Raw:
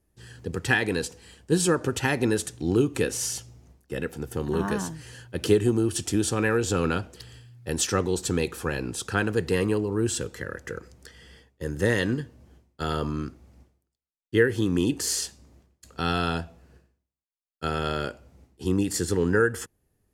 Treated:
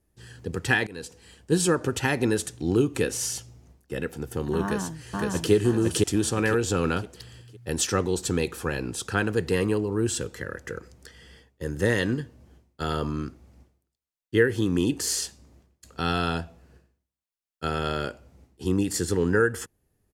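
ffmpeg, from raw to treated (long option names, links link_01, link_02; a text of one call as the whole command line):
ffmpeg -i in.wav -filter_complex "[0:a]asplit=2[link_01][link_02];[link_02]afade=type=in:start_time=4.62:duration=0.01,afade=type=out:start_time=5.52:duration=0.01,aecho=0:1:510|1020|1530|2040|2550:0.944061|0.330421|0.115647|0.0404766|0.0141668[link_03];[link_01][link_03]amix=inputs=2:normalize=0,asplit=2[link_04][link_05];[link_04]atrim=end=0.87,asetpts=PTS-STARTPTS,afade=type=out:start_time=0.866:duration=0.004:curve=hsin:silence=0.0841395[link_06];[link_05]atrim=start=0.87,asetpts=PTS-STARTPTS,afade=type=in:duration=0.67:curve=qsin:silence=0.0841395[link_07];[link_06][link_07]concat=n=2:v=0:a=1" out.wav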